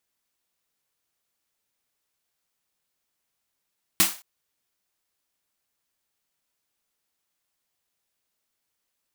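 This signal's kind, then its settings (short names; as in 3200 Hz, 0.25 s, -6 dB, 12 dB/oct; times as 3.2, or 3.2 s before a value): snare drum length 0.22 s, tones 190 Hz, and 320 Hz, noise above 650 Hz, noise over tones 12 dB, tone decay 0.21 s, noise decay 0.34 s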